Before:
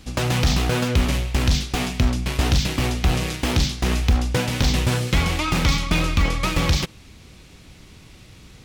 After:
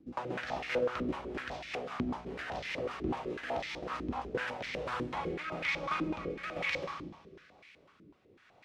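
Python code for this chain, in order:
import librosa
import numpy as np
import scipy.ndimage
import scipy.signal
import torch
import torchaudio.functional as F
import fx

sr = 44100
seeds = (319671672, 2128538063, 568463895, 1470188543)

y = fx.rev_schroeder(x, sr, rt60_s=2.0, comb_ms=30, drr_db=2.0)
y = fx.rotary_switch(y, sr, hz=5.0, then_hz=1.1, switch_at_s=3.92)
y = fx.filter_held_bandpass(y, sr, hz=8.0, low_hz=310.0, high_hz=2100.0)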